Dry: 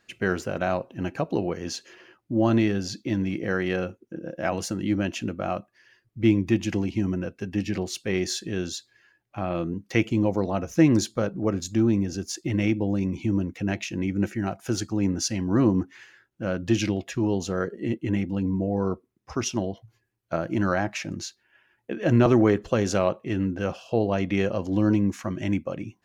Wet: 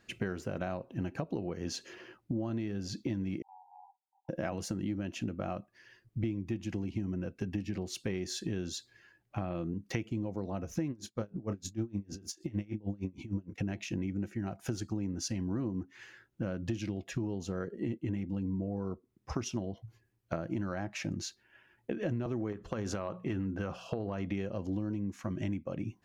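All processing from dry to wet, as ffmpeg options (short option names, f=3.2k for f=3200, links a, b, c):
-filter_complex "[0:a]asettb=1/sr,asplit=3[a][b][c];[a]atrim=end=3.424[d];[b]atrim=start=3.42:end=4.29,asetpts=PTS-STARTPTS,afade=t=in:d=0.004:c=qsin,afade=t=out:st=0.866:d=0.004:c=qsin,asuperpass=centerf=860:order=20:qfactor=3.6,acompressor=threshold=-52dB:ratio=2:attack=3.2:release=140:knee=1:detection=peak[e];[c]atrim=start=4.286[f];[d][e]acrossfade=d=0.004:c1=hsin:c2=qsin[g];[g][f]acrossfade=d=0.004:c1=qsin:c2=hsin,asettb=1/sr,asplit=3[h][i][j];[h]atrim=end=10.904[k];[i]atrim=start=10.9:end=13.58,asetpts=PTS-STARTPTS,afade=t=in:d=0.004:c=qsin,afade=t=out:st=2.676:d=0.004:c=qsin,asplit=2[l][m];[m]adelay=29,volume=-10dB[n];[l][n]amix=inputs=2:normalize=0,atrim=end_sample=118188,aeval=exprs='val(0)*pow(10,-28*(0.5-0.5*cos(2*PI*6.5*n/s))/20)':c=same[o];[j]atrim=start=13.576[p];[k][o]acrossfade=d=0.004:c1=hsin:c2=qsin[q];[q][p]acrossfade=d=0.004:c1=qsin:c2=hsin,asettb=1/sr,asplit=3[r][s][t];[r]atrim=end=22.524[u];[s]atrim=start=22.52:end=24.27,asetpts=PTS-STARTPTS,afade=t=in:d=0.004:c=qsin,afade=t=out:st=1.746:d=0.004:c=qsin,equalizer=f=1.2k:t=o:w=0.98:g=7,bandreject=f=60:t=h:w=6,bandreject=f=120:t=h:w=6,bandreject=f=180:t=h:w=6,acompressor=threshold=-22dB:ratio=4:attack=3.2:release=140:knee=1:detection=peak[v];[t]atrim=start=24.266[w];[u][v]acrossfade=d=0.004:c1=hsin:c2=qsin[x];[x][w]acrossfade=d=0.004:c1=qsin:c2=hsin,lowshelf=f=370:g=7,acompressor=threshold=-30dB:ratio=10,volume=-1.5dB"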